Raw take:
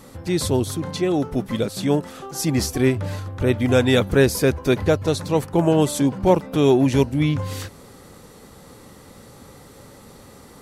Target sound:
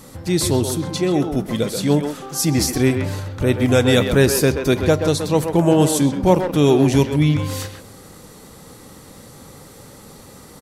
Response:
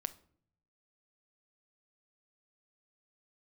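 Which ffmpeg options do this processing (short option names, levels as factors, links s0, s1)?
-filter_complex "[0:a]bass=f=250:g=4,treble=f=4000:g=5,asplit=2[s0][s1];[s1]adelay=130,highpass=300,lowpass=3400,asoftclip=type=hard:threshold=0.299,volume=0.501[s2];[s0][s2]amix=inputs=2:normalize=0,asplit=2[s3][s4];[1:a]atrim=start_sample=2205,lowshelf=f=130:g=-6[s5];[s4][s5]afir=irnorm=-1:irlink=0,volume=2.37[s6];[s3][s6]amix=inputs=2:normalize=0,volume=0.376"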